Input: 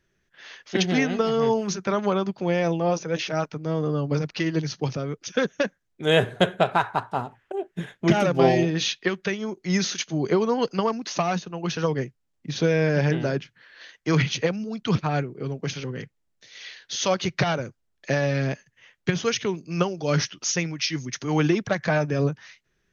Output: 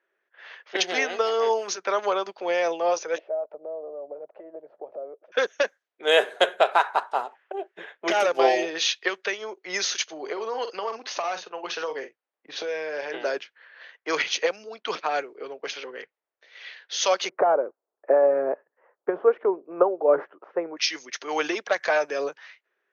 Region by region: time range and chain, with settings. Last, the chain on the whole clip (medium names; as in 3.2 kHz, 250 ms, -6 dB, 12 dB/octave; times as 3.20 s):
3.18–5.32 s: compression 10:1, threshold -36 dBFS + resonant low-pass 620 Hz, resonance Q 5.6
10.11–13.14 s: doubling 45 ms -12 dB + compression 12:1, threshold -23 dBFS
17.29–20.77 s: low-pass 1.2 kHz 24 dB/octave + peaking EQ 400 Hz +8 dB 2.3 oct
whole clip: high-pass 450 Hz 24 dB/octave; level-controlled noise filter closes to 1.8 kHz, open at -23.5 dBFS; trim +2 dB